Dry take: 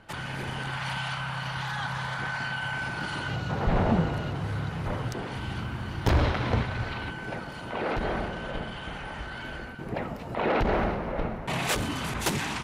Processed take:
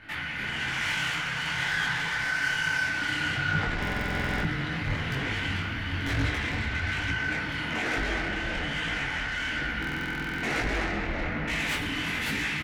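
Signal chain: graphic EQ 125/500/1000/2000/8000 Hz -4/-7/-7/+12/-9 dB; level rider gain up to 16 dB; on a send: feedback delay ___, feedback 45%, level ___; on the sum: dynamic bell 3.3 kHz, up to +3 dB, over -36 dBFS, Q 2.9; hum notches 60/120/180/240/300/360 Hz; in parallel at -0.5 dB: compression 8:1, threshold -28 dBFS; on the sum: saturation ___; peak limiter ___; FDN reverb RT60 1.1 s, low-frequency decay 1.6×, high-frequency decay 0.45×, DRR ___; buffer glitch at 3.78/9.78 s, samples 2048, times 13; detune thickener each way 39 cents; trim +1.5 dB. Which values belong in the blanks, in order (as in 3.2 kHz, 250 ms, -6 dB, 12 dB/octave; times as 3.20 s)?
443 ms, -14 dB, -14.5 dBFS, -25 dBFS, 3.5 dB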